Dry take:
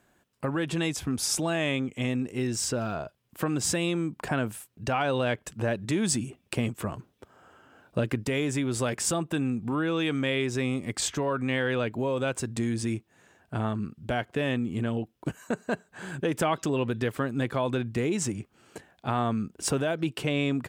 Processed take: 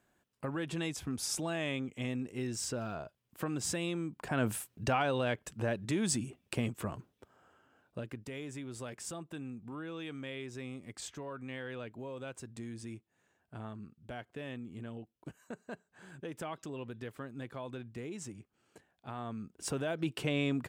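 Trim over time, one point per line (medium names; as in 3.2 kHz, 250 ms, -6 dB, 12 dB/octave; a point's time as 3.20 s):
4.29 s -8 dB
4.53 s +3 dB
5.13 s -5.5 dB
6.99 s -5.5 dB
8.09 s -15 dB
19.16 s -15 dB
20.09 s -5 dB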